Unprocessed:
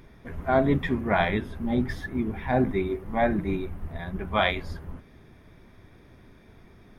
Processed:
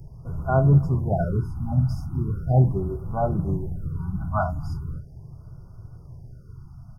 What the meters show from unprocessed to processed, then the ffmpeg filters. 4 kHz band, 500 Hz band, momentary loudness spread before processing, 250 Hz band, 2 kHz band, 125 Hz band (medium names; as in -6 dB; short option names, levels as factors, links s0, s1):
under -20 dB, -1.5 dB, 13 LU, -1.0 dB, -11.0 dB, +11.5 dB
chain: -filter_complex "[0:a]lowshelf=f=180:t=q:w=3:g=9.5,afftfilt=real='re*(1-between(b*sr/4096,1500,4700))':imag='im*(1-between(b*sr/4096,1500,4700))':win_size=4096:overlap=0.75,acrossover=split=110|2600[s0][s1][s2];[s0]asoftclip=type=tanh:threshold=0.0316[s3];[s3][s1][s2]amix=inputs=3:normalize=0,asplit=2[s4][s5];[s5]adelay=250.7,volume=0.0447,highshelf=f=4000:g=-5.64[s6];[s4][s6]amix=inputs=2:normalize=0,afftfilt=real='re*(1-between(b*sr/1024,410*pow(2600/410,0.5+0.5*sin(2*PI*0.39*pts/sr))/1.41,410*pow(2600/410,0.5+0.5*sin(2*PI*0.39*pts/sr))*1.41))':imag='im*(1-between(b*sr/1024,410*pow(2600/410,0.5+0.5*sin(2*PI*0.39*pts/sr))/1.41,410*pow(2600/410,0.5+0.5*sin(2*PI*0.39*pts/sr))*1.41))':win_size=1024:overlap=0.75"